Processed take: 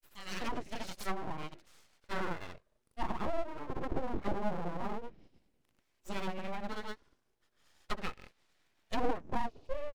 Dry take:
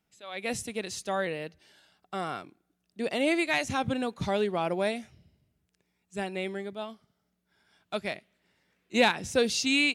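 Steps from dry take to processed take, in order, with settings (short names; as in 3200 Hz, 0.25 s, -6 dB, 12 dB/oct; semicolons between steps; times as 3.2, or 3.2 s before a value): grains 0.122 s, grains 26/s; treble ducked by the level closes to 340 Hz, closed at -28.5 dBFS; full-wave rectifier; gain +3.5 dB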